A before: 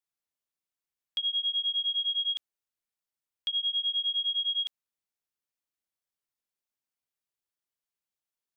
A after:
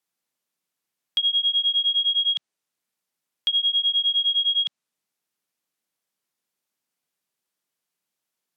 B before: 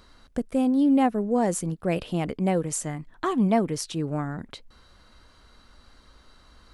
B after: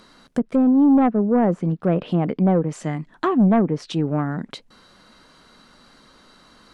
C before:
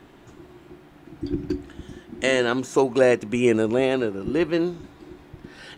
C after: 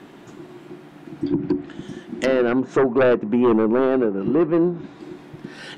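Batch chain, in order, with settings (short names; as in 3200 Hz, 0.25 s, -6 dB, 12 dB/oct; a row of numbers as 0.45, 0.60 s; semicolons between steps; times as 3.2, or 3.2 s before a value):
resonant low shelf 110 Hz -13.5 dB, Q 1.5; treble ducked by the level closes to 1200 Hz, closed at -20 dBFS; sine folder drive 8 dB, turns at -5 dBFS; match loudness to -20 LUFS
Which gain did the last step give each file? -3.0, -6.0, -6.5 dB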